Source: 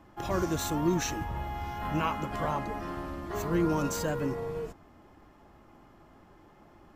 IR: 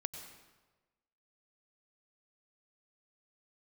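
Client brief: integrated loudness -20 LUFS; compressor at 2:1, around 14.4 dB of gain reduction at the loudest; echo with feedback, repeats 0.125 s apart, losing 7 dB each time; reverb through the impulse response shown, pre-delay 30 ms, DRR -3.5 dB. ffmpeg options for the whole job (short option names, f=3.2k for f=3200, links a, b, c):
-filter_complex "[0:a]acompressor=threshold=-50dB:ratio=2,aecho=1:1:125|250|375|500|625:0.447|0.201|0.0905|0.0407|0.0183,asplit=2[a][b];[1:a]atrim=start_sample=2205,adelay=30[c];[b][c]afir=irnorm=-1:irlink=0,volume=4.5dB[d];[a][d]amix=inputs=2:normalize=0,volume=17dB"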